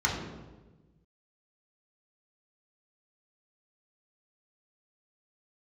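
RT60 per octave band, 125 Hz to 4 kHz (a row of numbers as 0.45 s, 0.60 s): 1.8 s, 1.5 s, 1.4 s, 1.1 s, 0.90 s, 0.80 s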